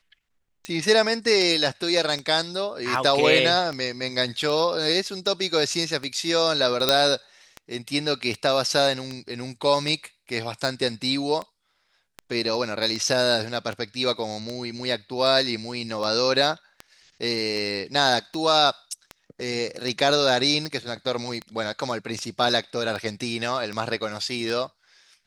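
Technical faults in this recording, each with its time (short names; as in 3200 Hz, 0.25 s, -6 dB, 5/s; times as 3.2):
tick 78 rpm -18 dBFS
6.89 pop -2 dBFS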